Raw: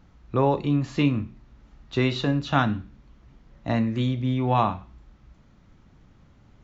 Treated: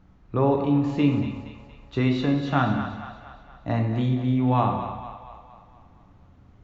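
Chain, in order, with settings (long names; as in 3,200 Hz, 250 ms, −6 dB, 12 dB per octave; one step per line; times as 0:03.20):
high-shelf EQ 2,500 Hz −8 dB
echo with a time of its own for lows and highs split 520 Hz, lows 97 ms, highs 234 ms, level −10 dB
on a send at −4.5 dB: convolution reverb RT60 1.0 s, pre-delay 4 ms
on the sum: level −1 dB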